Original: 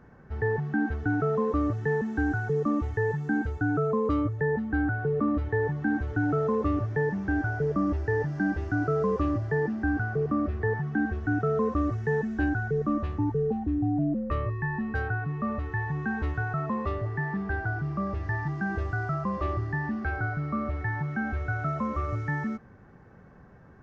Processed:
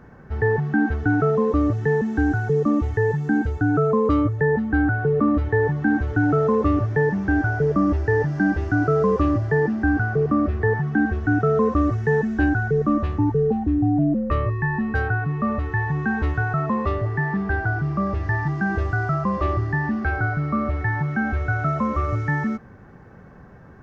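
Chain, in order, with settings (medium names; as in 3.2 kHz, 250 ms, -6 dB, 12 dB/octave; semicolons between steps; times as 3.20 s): 1.30–3.74 s: dynamic bell 1.3 kHz, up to -4 dB, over -43 dBFS, Q 1.2; trim +7 dB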